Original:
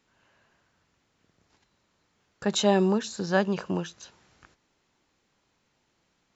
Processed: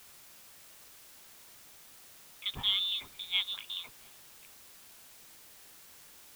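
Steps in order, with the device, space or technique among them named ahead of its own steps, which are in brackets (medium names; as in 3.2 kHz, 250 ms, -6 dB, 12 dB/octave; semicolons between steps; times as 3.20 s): scrambled radio voice (band-pass 320–2800 Hz; frequency inversion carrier 3.9 kHz; white noise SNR 14 dB); trim -6.5 dB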